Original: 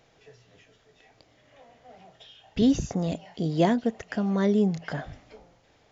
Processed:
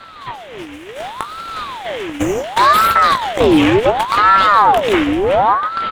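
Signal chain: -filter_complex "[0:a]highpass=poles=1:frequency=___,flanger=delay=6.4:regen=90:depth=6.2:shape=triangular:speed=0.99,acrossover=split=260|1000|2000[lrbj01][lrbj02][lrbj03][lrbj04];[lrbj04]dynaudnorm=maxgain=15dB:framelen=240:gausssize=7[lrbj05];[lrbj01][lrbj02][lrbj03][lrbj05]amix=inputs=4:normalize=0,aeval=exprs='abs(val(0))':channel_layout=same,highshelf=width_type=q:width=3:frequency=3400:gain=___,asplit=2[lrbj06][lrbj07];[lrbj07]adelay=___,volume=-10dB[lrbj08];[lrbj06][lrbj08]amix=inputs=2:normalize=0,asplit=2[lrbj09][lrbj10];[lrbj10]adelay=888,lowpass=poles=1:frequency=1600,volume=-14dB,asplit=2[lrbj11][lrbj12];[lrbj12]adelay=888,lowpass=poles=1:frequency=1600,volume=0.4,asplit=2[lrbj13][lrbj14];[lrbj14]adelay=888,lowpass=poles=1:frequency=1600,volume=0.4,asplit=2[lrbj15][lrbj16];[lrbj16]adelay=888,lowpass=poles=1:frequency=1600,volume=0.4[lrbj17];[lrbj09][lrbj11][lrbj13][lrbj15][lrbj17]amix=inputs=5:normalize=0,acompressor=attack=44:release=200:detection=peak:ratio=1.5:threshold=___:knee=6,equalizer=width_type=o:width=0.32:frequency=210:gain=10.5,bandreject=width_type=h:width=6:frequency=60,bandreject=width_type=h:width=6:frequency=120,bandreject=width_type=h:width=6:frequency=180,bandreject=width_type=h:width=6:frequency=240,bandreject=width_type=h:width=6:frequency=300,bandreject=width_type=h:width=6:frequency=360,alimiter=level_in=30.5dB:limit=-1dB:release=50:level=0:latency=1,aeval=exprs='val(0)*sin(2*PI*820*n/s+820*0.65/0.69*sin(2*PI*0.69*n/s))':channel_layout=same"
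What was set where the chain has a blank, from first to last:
59, -8.5, 18, -52dB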